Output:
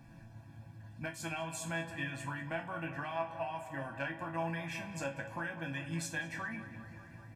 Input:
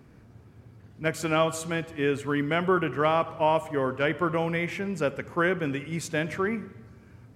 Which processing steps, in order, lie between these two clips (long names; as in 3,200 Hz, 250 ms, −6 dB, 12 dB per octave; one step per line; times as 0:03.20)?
harmonic and percussive parts rebalanced percussive +8 dB
comb filter 1.2 ms, depth 99%
downward compressor 6 to 1, threshold −29 dBFS, peak gain reduction 15.5 dB
resonators tuned to a chord A2 major, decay 0.29 s
tape delay 198 ms, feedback 85%, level −13 dB, low-pass 2,900 Hz
level +5 dB